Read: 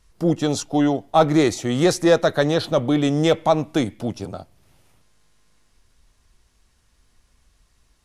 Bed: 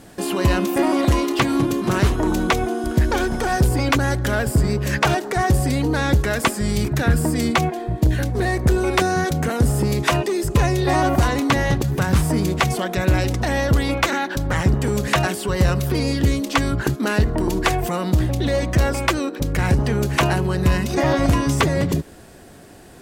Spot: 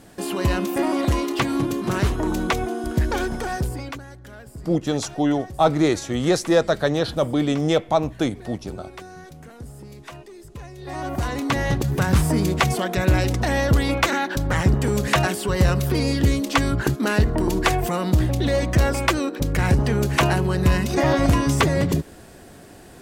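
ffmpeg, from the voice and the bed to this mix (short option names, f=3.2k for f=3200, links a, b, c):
-filter_complex "[0:a]adelay=4450,volume=-2dB[a];[1:a]volume=17dB,afade=t=out:st=3.25:d=0.79:silence=0.133352,afade=t=in:st=10.76:d=1.25:silence=0.0944061[b];[a][b]amix=inputs=2:normalize=0"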